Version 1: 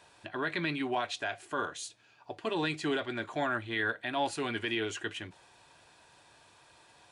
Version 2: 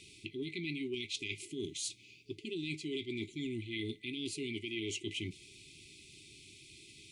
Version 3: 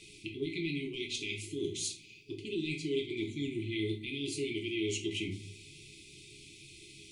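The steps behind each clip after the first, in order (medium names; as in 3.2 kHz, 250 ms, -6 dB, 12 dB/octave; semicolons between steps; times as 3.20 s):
FFT band-reject 430–2000 Hz; reverse; compression 16:1, threshold -43 dBFS, peak gain reduction 15.5 dB; reverse; trim +7.5 dB
simulated room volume 37 m³, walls mixed, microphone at 0.58 m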